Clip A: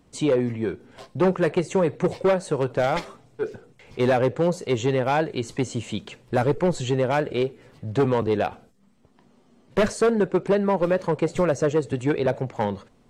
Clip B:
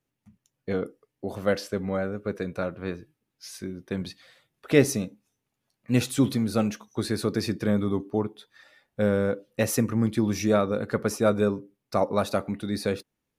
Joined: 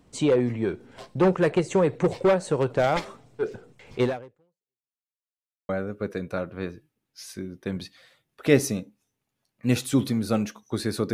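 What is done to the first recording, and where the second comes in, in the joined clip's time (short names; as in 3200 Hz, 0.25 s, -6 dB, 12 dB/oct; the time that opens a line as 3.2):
clip A
4.03–4.93 fade out exponential
4.93–5.69 mute
5.69 switch to clip B from 1.94 s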